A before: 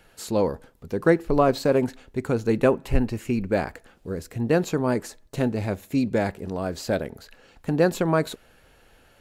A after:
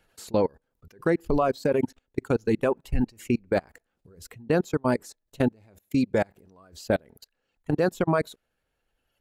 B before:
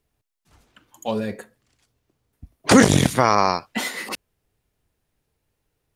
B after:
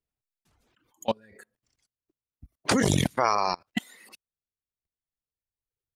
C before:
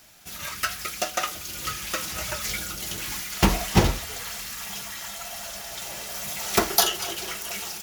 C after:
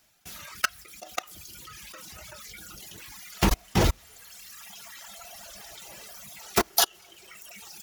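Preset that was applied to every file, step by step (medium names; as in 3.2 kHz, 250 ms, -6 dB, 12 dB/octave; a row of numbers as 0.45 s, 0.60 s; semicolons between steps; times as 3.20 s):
level held to a coarse grid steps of 23 dB; reverb removal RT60 1.9 s; normalise loudness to -27 LUFS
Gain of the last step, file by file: +3.0 dB, +1.5 dB, +4.5 dB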